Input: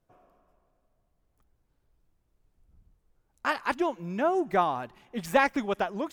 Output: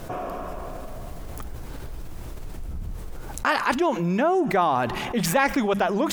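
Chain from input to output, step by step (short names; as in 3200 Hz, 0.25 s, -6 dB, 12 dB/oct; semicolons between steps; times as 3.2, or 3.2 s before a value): notches 50/100/150/200 Hz; fast leveller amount 70%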